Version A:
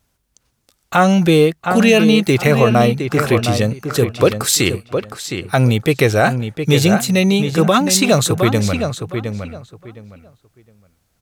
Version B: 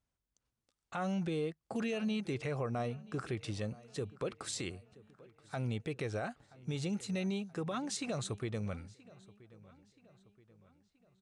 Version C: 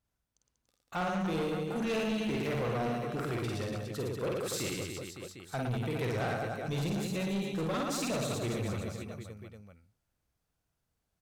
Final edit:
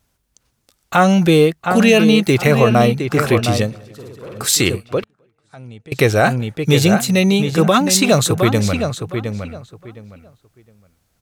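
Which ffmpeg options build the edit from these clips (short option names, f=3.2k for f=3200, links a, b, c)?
-filter_complex "[0:a]asplit=3[a][b][c];[a]atrim=end=3.76[d];[2:a]atrim=start=3.6:end=4.48[e];[b]atrim=start=4.32:end=5.042[f];[1:a]atrim=start=5.038:end=5.922[g];[c]atrim=start=5.918[h];[d][e]acrossfade=d=0.16:c1=tri:c2=tri[i];[i][f]acrossfade=d=0.16:c1=tri:c2=tri[j];[j][g]acrossfade=d=0.004:c1=hsin:c2=hsin[k];[k][h]acrossfade=d=0.004:c1=hsin:c2=hsin"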